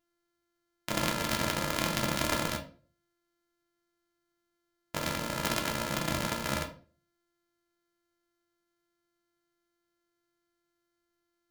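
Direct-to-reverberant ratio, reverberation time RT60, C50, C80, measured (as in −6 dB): 2.5 dB, 0.40 s, 12.0 dB, 16.0 dB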